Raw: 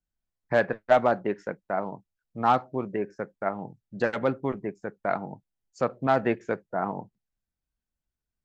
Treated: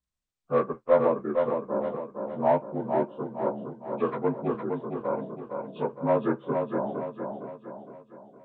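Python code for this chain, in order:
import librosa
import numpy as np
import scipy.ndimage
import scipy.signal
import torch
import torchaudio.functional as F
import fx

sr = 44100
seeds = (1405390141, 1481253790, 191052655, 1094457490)

y = fx.partial_stretch(x, sr, pct=80)
y = fx.echo_feedback(y, sr, ms=461, feedback_pct=46, wet_db=-5.0)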